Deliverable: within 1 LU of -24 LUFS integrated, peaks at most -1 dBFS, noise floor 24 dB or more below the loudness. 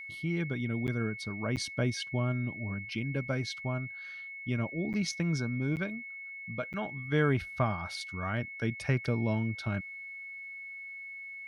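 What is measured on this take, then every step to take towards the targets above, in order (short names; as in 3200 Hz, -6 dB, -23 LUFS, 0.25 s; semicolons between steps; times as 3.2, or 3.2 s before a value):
dropouts 5; longest dropout 8.5 ms; steady tone 2200 Hz; tone level -41 dBFS; loudness -33.5 LUFS; peak -16.0 dBFS; loudness target -24.0 LUFS
-> interpolate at 0.87/1.56/4.93/5.76/6.73, 8.5 ms; notch 2200 Hz, Q 30; gain +9.5 dB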